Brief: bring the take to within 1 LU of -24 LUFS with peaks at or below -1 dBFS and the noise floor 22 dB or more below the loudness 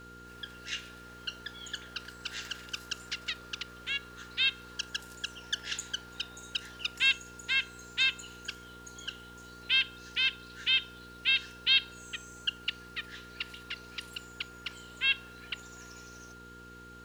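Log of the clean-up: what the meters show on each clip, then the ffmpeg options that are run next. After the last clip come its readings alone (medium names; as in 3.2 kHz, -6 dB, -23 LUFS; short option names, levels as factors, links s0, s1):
hum 60 Hz; highest harmonic 480 Hz; hum level -50 dBFS; steady tone 1.4 kHz; tone level -50 dBFS; loudness -32.5 LUFS; peak level -13.5 dBFS; loudness target -24.0 LUFS
-> -af "bandreject=f=60:t=h:w=4,bandreject=f=120:t=h:w=4,bandreject=f=180:t=h:w=4,bandreject=f=240:t=h:w=4,bandreject=f=300:t=h:w=4,bandreject=f=360:t=h:w=4,bandreject=f=420:t=h:w=4,bandreject=f=480:t=h:w=4"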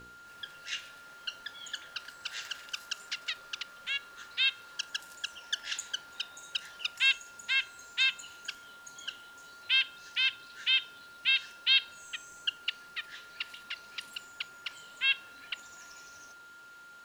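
hum not found; steady tone 1.4 kHz; tone level -50 dBFS
-> -af "bandreject=f=1400:w=30"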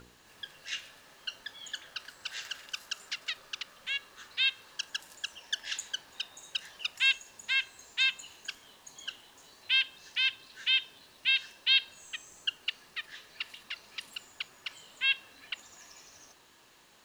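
steady tone not found; loudness -32.5 LUFS; peak level -13.5 dBFS; loudness target -24.0 LUFS
-> -af "volume=2.66"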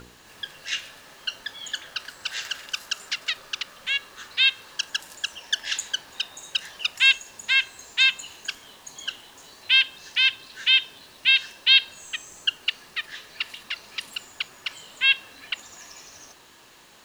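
loudness -24.0 LUFS; peak level -5.0 dBFS; noise floor -51 dBFS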